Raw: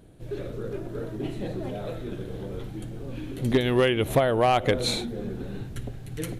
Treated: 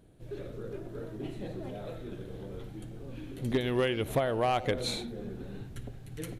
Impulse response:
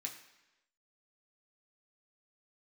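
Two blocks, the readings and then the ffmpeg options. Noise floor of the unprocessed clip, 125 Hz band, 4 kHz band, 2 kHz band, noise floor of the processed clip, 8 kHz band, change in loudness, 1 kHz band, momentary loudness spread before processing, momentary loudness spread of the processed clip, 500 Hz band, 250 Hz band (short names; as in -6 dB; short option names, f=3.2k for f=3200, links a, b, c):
-39 dBFS, -7.0 dB, -7.0 dB, -7.0 dB, -46 dBFS, -7.0 dB, -7.0 dB, -7.0 dB, 15 LU, 15 LU, -7.0 dB, -7.0 dB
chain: -filter_complex "[0:a]asplit=2[a][b];[b]adelay=90,highpass=300,lowpass=3.4k,asoftclip=type=hard:threshold=-20.5dB,volume=-15dB[c];[a][c]amix=inputs=2:normalize=0,volume=-7dB"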